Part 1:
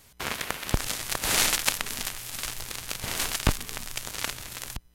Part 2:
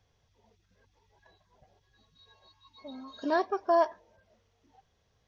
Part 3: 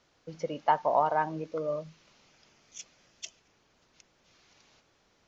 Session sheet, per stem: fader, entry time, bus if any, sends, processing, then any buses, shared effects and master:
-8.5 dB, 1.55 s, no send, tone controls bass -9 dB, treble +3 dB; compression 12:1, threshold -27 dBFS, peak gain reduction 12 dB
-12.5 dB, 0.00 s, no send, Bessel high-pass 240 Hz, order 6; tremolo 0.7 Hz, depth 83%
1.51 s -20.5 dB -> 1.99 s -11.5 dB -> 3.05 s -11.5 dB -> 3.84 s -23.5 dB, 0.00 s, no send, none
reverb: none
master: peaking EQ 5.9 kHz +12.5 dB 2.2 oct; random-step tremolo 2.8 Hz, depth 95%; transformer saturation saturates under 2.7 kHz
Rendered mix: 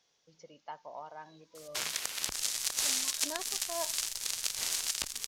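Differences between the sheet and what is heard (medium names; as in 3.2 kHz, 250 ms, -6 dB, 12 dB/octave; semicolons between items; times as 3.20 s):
stem 2 -12.5 dB -> -4.5 dB; master: missing random-step tremolo 2.8 Hz, depth 95%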